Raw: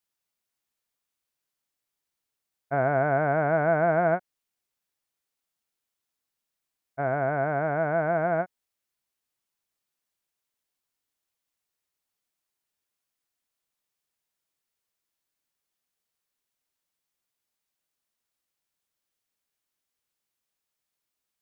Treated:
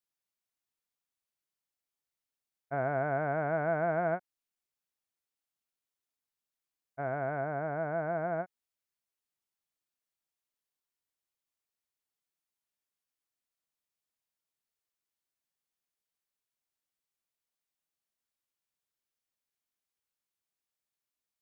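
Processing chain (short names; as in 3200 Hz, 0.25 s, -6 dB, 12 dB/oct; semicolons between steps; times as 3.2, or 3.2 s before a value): 7.41–8.44 LPF 2200 Hz 6 dB/oct; gain -7.5 dB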